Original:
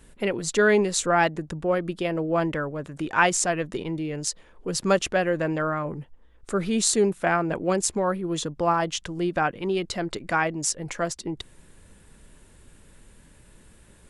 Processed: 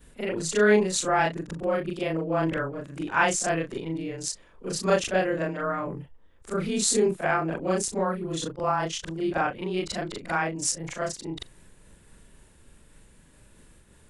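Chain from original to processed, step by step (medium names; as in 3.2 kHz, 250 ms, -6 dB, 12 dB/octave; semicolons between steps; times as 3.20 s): short-time spectra conjugated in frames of 86 ms; random flutter of the level, depth 55%; trim +3.5 dB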